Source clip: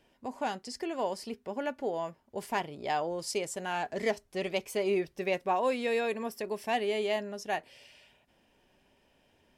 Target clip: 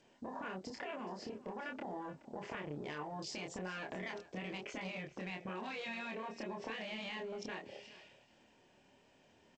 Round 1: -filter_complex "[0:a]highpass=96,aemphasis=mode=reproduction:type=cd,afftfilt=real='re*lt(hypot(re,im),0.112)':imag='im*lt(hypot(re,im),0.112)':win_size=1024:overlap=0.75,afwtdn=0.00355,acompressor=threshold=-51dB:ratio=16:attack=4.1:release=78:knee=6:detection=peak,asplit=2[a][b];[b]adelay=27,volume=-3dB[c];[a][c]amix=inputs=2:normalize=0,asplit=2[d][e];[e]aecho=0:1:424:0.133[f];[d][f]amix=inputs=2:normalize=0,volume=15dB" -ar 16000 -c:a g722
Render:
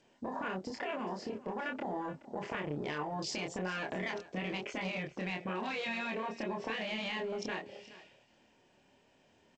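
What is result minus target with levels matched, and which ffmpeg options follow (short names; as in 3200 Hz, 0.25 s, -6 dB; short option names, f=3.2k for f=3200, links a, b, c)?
compressor: peak gain reduction -6 dB
-filter_complex "[0:a]highpass=96,aemphasis=mode=reproduction:type=cd,afftfilt=real='re*lt(hypot(re,im),0.112)':imag='im*lt(hypot(re,im),0.112)':win_size=1024:overlap=0.75,afwtdn=0.00355,acompressor=threshold=-57.5dB:ratio=16:attack=4.1:release=78:knee=6:detection=peak,asplit=2[a][b];[b]adelay=27,volume=-3dB[c];[a][c]amix=inputs=2:normalize=0,asplit=2[d][e];[e]aecho=0:1:424:0.133[f];[d][f]amix=inputs=2:normalize=0,volume=15dB" -ar 16000 -c:a g722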